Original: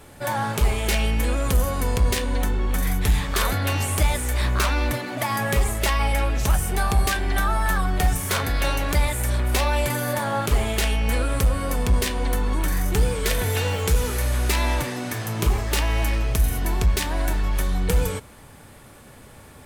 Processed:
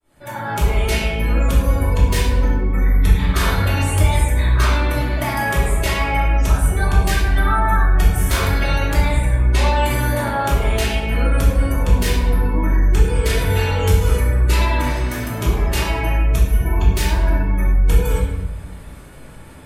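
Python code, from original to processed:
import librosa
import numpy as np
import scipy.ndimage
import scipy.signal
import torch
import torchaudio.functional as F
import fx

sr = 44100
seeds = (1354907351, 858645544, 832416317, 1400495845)

y = fx.fade_in_head(x, sr, length_s=0.54)
y = fx.spec_gate(y, sr, threshold_db=-30, keep='strong')
y = fx.lowpass(y, sr, hz=fx.line((9.07, 6400.0), (9.59, 11000.0)), slope=12, at=(9.07, 9.59), fade=0.02)
y = fx.room_shoebox(y, sr, seeds[0], volume_m3=530.0, walls='mixed', distance_m=2.8)
y = y * 10.0 ** (-3.0 / 20.0)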